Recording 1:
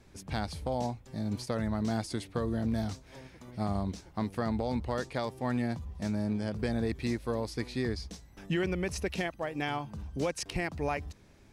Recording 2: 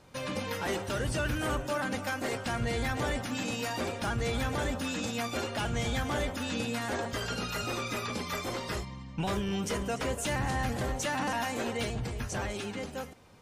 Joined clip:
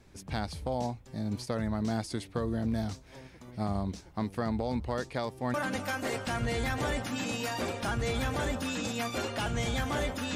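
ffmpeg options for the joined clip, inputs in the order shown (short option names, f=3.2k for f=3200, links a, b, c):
-filter_complex "[0:a]apad=whole_dur=10.35,atrim=end=10.35,atrim=end=5.542[a];[1:a]atrim=start=1.728:end=6.54[b];[a][b]acrossfade=d=0.004:c1=hsin:c2=hsin"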